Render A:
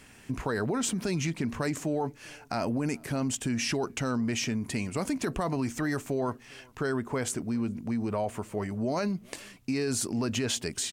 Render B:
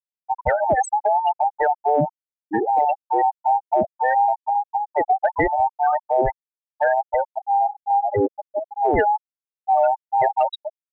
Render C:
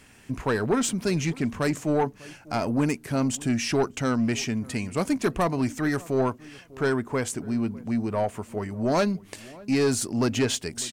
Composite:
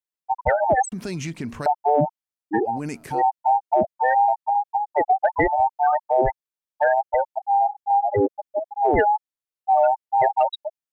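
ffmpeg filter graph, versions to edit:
-filter_complex "[0:a]asplit=2[s0][s1];[1:a]asplit=3[s2][s3][s4];[s2]atrim=end=0.922[s5];[s0]atrim=start=0.918:end=1.662[s6];[s3]atrim=start=1.658:end=2.8[s7];[s1]atrim=start=2.64:end=3.23[s8];[s4]atrim=start=3.07[s9];[s5][s6]acrossfade=d=0.004:c1=hsin:c2=hsin[s10];[s10][s7]acrossfade=d=0.004:c1=hsin:c2=hsin[s11];[s11][s8]acrossfade=d=0.16:c1=tri:c2=tri[s12];[s12][s9]acrossfade=d=0.16:c1=tri:c2=tri"

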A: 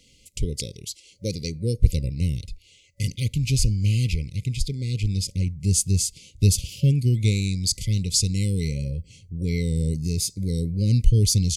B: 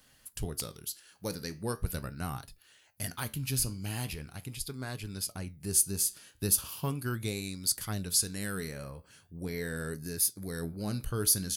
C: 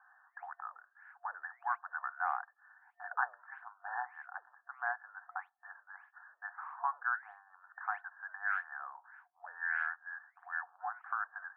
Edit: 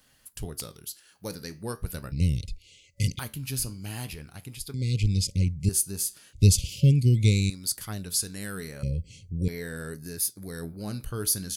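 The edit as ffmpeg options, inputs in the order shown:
-filter_complex "[0:a]asplit=4[s0][s1][s2][s3];[1:a]asplit=5[s4][s5][s6][s7][s8];[s4]atrim=end=2.122[s9];[s0]atrim=start=2.118:end=3.192[s10];[s5]atrim=start=3.188:end=4.742[s11];[s1]atrim=start=4.738:end=5.692[s12];[s6]atrim=start=5.688:end=6.332[s13];[s2]atrim=start=6.328:end=7.502[s14];[s7]atrim=start=7.498:end=8.832[s15];[s3]atrim=start=8.828:end=9.482[s16];[s8]atrim=start=9.478[s17];[s9][s10]acrossfade=d=0.004:c1=hsin:c2=hsin[s18];[s18][s11]acrossfade=d=0.004:c1=hsin:c2=hsin[s19];[s19][s12]acrossfade=d=0.004:c1=hsin:c2=hsin[s20];[s20][s13]acrossfade=d=0.004:c1=hsin:c2=hsin[s21];[s21][s14]acrossfade=d=0.004:c1=hsin:c2=hsin[s22];[s22][s15]acrossfade=d=0.004:c1=hsin:c2=hsin[s23];[s23][s16]acrossfade=d=0.004:c1=hsin:c2=hsin[s24];[s24][s17]acrossfade=d=0.004:c1=hsin:c2=hsin"

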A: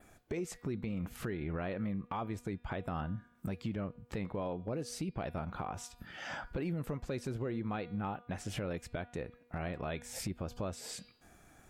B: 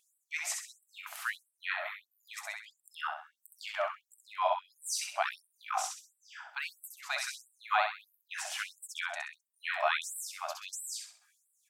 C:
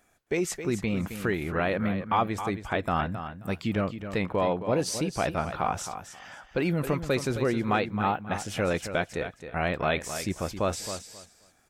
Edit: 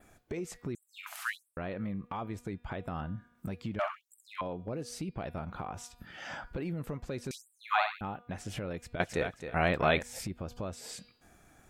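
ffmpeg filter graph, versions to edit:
-filter_complex "[1:a]asplit=3[s0][s1][s2];[0:a]asplit=5[s3][s4][s5][s6][s7];[s3]atrim=end=0.752[s8];[s0]atrim=start=0.748:end=1.572[s9];[s4]atrim=start=1.568:end=3.792[s10];[s1]atrim=start=3.788:end=4.412[s11];[s5]atrim=start=4.408:end=7.312[s12];[s2]atrim=start=7.308:end=8.012[s13];[s6]atrim=start=8.008:end=9.002[s14];[2:a]atrim=start=8.998:end=10.032[s15];[s7]atrim=start=10.028[s16];[s8][s9]acrossfade=d=0.004:c1=hsin:c2=hsin[s17];[s17][s10]acrossfade=d=0.004:c1=hsin:c2=hsin[s18];[s18][s11]acrossfade=d=0.004:c1=hsin:c2=hsin[s19];[s19][s12]acrossfade=d=0.004:c1=hsin:c2=hsin[s20];[s20][s13]acrossfade=d=0.004:c1=hsin:c2=hsin[s21];[s21][s14]acrossfade=d=0.004:c1=hsin:c2=hsin[s22];[s22][s15]acrossfade=d=0.004:c1=hsin:c2=hsin[s23];[s23][s16]acrossfade=d=0.004:c1=hsin:c2=hsin"

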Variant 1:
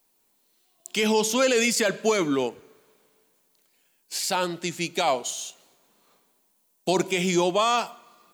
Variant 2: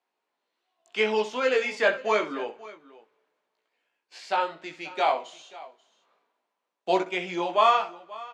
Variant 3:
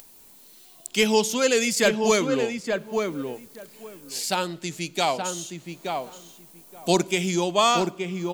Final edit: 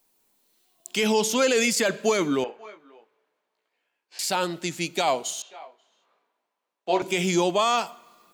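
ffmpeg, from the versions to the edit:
-filter_complex "[1:a]asplit=2[s0][s1];[0:a]asplit=3[s2][s3][s4];[s2]atrim=end=2.442[s5];[s0]atrim=start=2.438:end=4.192[s6];[s3]atrim=start=4.188:end=5.422[s7];[s1]atrim=start=5.418:end=7.022[s8];[s4]atrim=start=7.018[s9];[s5][s6]acrossfade=d=0.004:c1=hsin:c2=hsin[s10];[s10][s7]acrossfade=d=0.004:c1=hsin:c2=hsin[s11];[s11][s8]acrossfade=d=0.004:c1=hsin:c2=hsin[s12];[s12][s9]acrossfade=d=0.004:c1=hsin:c2=hsin"

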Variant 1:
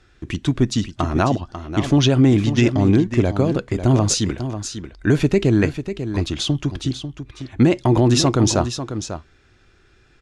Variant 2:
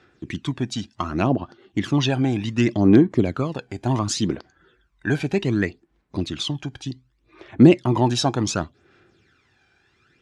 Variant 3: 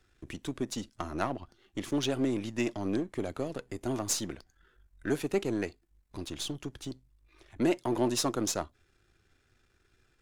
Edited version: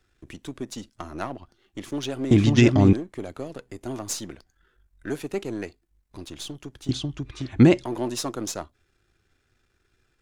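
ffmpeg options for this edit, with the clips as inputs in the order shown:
-filter_complex "[0:a]asplit=2[s0][s1];[2:a]asplit=3[s2][s3][s4];[s2]atrim=end=2.312[s5];[s0]atrim=start=2.308:end=2.932[s6];[s3]atrim=start=2.928:end=6.892[s7];[s1]atrim=start=6.888:end=7.852[s8];[s4]atrim=start=7.848[s9];[s5][s6]acrossfade=d=0.004:c1=hsin:c2=hsin[s10];[s10][s7]acrossfade=d=0.004:c1=hsin:c2=hsin[s11];[s11][s8]acrossfade=d=0.004:c1=hsin:c2=hsin[s12];[s12][s9]acrossfade=d=0.004:c1=hsin:c2=hsin"

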